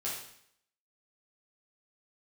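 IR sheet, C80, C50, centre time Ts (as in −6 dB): 6.0 dB, 2.5 dB, 48 ms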